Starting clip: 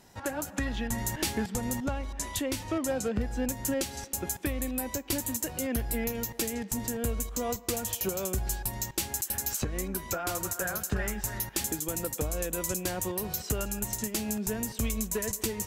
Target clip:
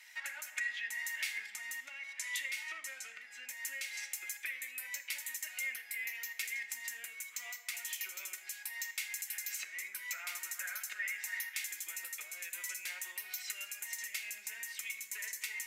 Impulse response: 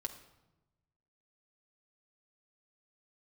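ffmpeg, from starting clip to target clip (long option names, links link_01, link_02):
-filter_complex "[0:a]acompressor=threshold=-37dB:ratio=6,highpass=frequency=2100:width_type=q:width=7.3[link_01];[1:a]atrim=start_sample=2205,asetrate=61740,aresample=44100[link_02];[link_01][link_02]afir=irnorm=-1:irlink=0,volume=4dB"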